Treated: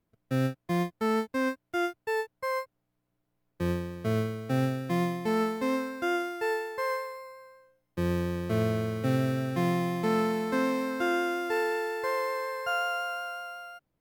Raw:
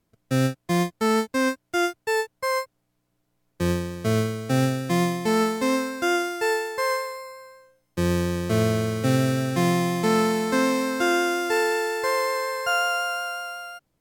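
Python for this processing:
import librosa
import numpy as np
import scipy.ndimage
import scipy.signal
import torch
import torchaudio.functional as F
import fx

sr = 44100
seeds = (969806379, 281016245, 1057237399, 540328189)

y = fx.peak_eq(x, sr, hz=7300.0, db=-9.5, octaves=1.7)
y = y * librosa.db_to_amplitude(-5.5)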